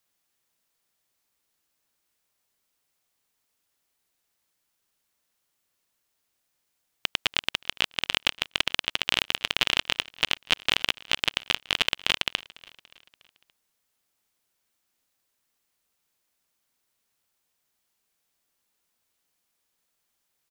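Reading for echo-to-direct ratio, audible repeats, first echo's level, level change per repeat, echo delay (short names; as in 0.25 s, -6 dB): -21.0 dB, 3, -22.5 dB, -5.5 dB, 0.287 s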